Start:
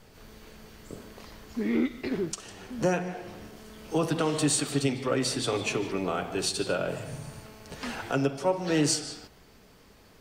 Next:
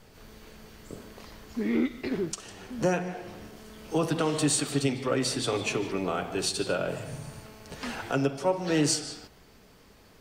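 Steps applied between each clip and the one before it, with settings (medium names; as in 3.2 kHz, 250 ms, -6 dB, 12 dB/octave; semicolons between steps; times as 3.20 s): no audible change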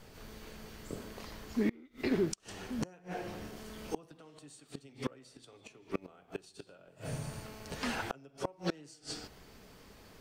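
inverted gate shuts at -20 dBFS, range -29 dB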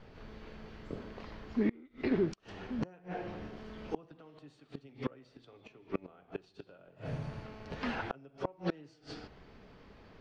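distance through air 250 m; trim +1 dB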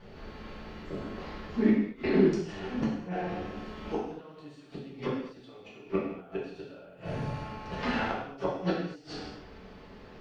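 gated-style reverb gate 270 ms falling, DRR -6 dB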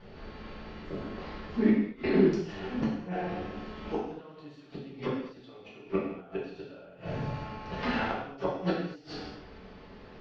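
low-pass 5.8 kHz 24 dB/octave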